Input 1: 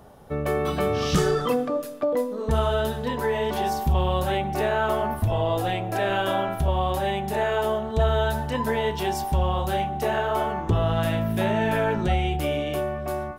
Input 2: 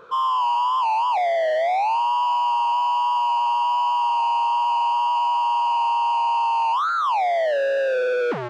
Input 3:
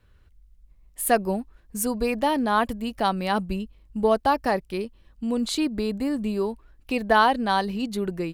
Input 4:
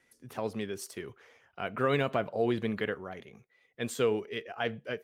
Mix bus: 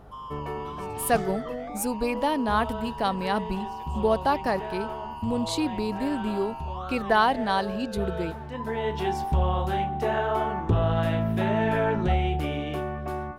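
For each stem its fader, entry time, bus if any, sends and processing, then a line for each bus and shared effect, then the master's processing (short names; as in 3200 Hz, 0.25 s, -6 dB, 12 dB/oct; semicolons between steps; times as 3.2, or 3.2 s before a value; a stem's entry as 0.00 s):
-0.5 dB, 0.00 s, no send, high shelf 4400 Hz -11.5 dB; notch 580 Hz, Q 15; auto duck -11 dB, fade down 0.70 s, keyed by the third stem
-18.5 dB, 0.00 s, no send, dry
-2.5 dB, 0.00 s, no send, hum 50 Hz, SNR 25 dB
-13.5 dB, 0.00 s, no send, compressor, threshold -37 dBFS, peak gain reduction 13.5 dB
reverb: off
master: Doppler distortion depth 0.12 ms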